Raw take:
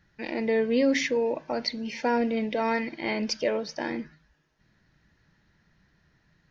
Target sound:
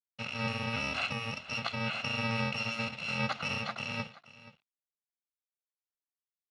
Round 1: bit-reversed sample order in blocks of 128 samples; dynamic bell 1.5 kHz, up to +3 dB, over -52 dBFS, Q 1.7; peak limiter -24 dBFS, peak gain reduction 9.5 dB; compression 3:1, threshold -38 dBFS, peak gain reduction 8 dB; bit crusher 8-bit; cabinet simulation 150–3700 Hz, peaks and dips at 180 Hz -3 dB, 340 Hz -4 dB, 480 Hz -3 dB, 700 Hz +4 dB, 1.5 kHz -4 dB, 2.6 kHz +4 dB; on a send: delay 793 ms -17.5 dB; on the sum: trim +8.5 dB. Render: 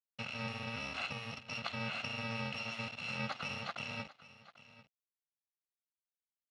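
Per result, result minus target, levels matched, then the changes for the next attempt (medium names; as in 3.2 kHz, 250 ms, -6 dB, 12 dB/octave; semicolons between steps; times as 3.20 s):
echo 316 ms late; compression: peak gain reduction +8 dB
change: delay 477 ms -17.5 dB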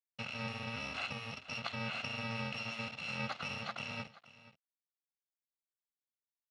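compression: peak gain reduction +8 dB
remove: compression 3:1, threshold -38 dBFS, peak gain reduction 8 dB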